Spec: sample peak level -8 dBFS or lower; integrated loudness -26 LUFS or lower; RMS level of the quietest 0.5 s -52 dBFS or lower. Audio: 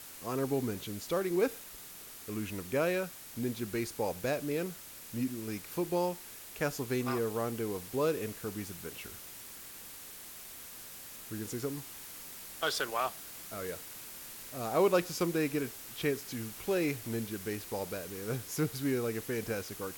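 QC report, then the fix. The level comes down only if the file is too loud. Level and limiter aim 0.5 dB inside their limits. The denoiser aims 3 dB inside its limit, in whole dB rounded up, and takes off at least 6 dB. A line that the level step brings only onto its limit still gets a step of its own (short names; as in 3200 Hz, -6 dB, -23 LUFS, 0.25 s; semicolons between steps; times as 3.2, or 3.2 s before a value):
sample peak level -16.0 dBFS: OK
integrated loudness -35.5 LUFS: OK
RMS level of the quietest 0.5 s -49 dBFS: fail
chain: denoiser 6 dB, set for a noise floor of -49 dBFS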